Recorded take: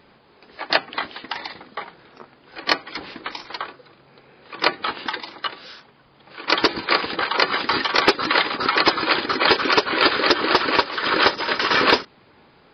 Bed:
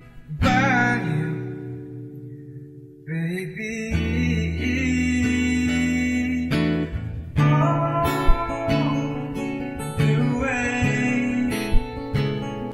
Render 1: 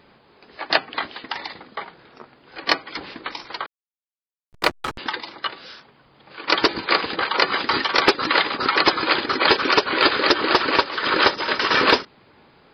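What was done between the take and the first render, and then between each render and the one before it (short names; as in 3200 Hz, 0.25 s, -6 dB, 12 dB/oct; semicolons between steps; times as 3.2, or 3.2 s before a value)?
3.66–4.98 backlash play -18 dBFS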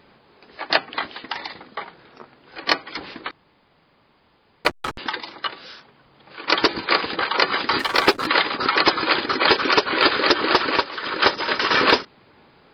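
3.31–4.65 room tone; 7.79–8.27 backlash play -26.5 dBFS; 10.56–11.22 fade out, to -8.5 dB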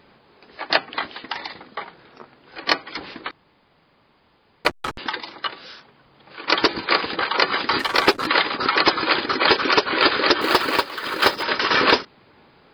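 10.41–11.43 short-mantissa float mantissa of 2-bit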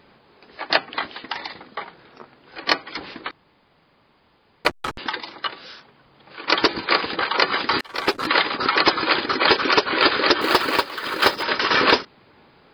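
7.81–8.28 fade in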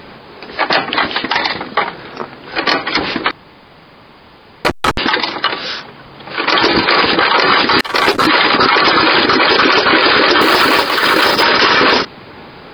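in parallel at -2 dB: negative-ratio compressor -23 dBFS; on the sum: maximiser +12 dB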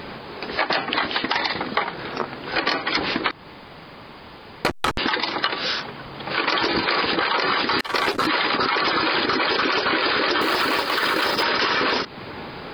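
compressor 4:1, threshold -20 dBFS, peak gain reduction 11.5 dB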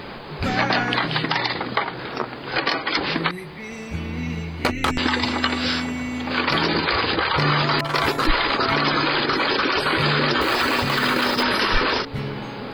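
add bed -6 dB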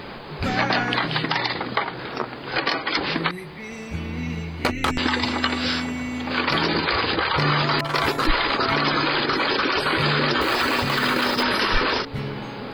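gain -1 dB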